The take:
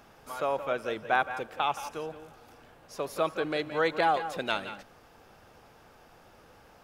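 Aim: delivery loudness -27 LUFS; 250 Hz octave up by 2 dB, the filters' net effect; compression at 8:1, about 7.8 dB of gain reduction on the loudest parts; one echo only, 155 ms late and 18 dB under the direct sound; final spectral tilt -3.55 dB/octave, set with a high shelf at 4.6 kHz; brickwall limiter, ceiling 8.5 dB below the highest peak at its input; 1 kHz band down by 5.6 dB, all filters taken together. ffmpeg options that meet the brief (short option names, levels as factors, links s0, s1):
-af "equalizer=f=250:t=o:g=3.5,equalizer=f=1000:t=o:g=-8,highshelf=f=4600:g=-6,acompressor=threshold=0.0282:ratio=8,alimiter=level_in=1.58:limit=0.0631:level=0:latency=1,volume=0.631,aecho=1:1:155:0.126,volume=4.73"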